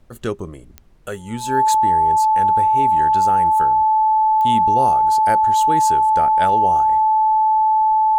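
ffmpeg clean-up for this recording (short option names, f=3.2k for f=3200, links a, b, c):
-af "adeclick=t=4,bandreject=f=870:w=30,agate=range=-21dB:threshold=-28dB"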